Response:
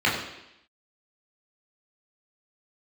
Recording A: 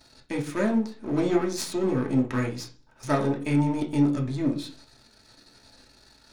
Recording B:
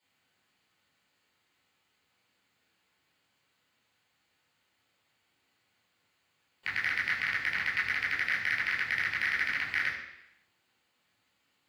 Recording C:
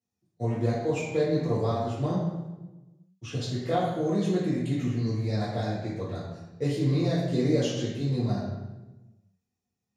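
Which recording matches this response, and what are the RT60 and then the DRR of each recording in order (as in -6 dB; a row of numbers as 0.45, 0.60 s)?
B; 0.40, 0.85, 1.1 s; 0.0, -6.5, -9.5 dB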